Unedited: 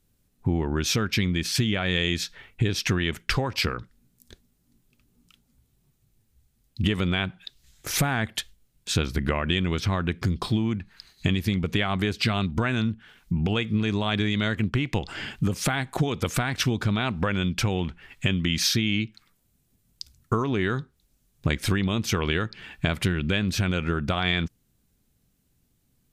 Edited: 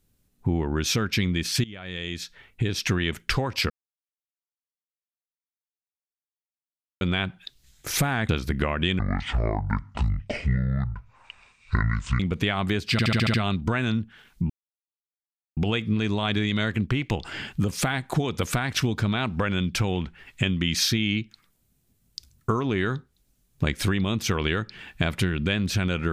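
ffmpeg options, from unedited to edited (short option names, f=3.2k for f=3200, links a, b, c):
-filter_complex "[0:a]asplit=14[a][b][c][d][e][f][g][h][i][j][k][l][m][n];[a]atrim=end=1.64,asetpts=PTS-STARTPTS,afade=t=out:st=1.636:d=0.004:c=hsin:silence=0.11885[o];[b]atrim=start=1.64:end=3.7,asetpts=PTS-STARTPTS,afade=t=in:d=1.28:silence=0.11885,afade=t=out:st=2.056:d=0.004:c=hsin[p];[c]atrim=start=3.7:end=7.01,asetpts=PTS-STARTPTS,volume=0[q];[d]atrim=start=7.01:end=8.292,asetpts=PTS-STARTPTS,afade=t=in:d=0.004:c=hsin[r];[e]atrim=start=8.958:end=9.664[s];[f]atrim=start=9.66:end=11.52,asetpts=PTS-STARTPTS,asetrate=25578,aresample=44100,atrim=end_sample=141424,asetpts=PTS-STARTPTS[t];[g]atrim=start=11.516:end=12.312[u];[h]atrim=start=12.238:end=12.312[v];[i]atrim=start=12.238:end=12.312[w];[j]atrim=start=12.238:end=12.312[x];[k]atrim=start=12.238:end=12.312[y];[l]atrim=start=12.238:end=12.312[z];[m]atrim=start=12.238:end=13.4,asetpts=PTS-STARTPTS,afade=t=out:st=1.158:d=0.004:c=hsin,apad=pad_dur=1.07[aa];[n]atrim=start=13.4,asetpts=PTS-STARTPTS,afade=t=in:d=0.004:c=hsin[ab];[o][p][q][r]concat=n=4:v=0:a=1[ac];[ac][s]acrossfade=d=0.004:c1=hsin:c2=hsin[ad];[ad][t]acrossfade=d=0.004:c1=hsin:c2=hsin[ae];[ae][u]acrossfade=d=0.004:c1=hsin:c2=hsin[af];[af][v]acrossfade=d=0.004:c1=hsin:c2=hsin[ag];[ag][w]acrossfade=d=0.004:c1=hsin:c2=hsin[ah];[ah][x]acrossfade=d=0.004:c1=hsin:c2=hsin[ai];[ai][y]acrossfade=d=0.004:c1=hsin:c2=hsin[aj];[aj][z]acrossfade=d=0.004:c1=hsin:c2=hsin[ak];[aa][ab]concat=n=2:v=0:a=1[al];[ak][al]acrossfade=d=0.004:c1=hsin:c2=hsin"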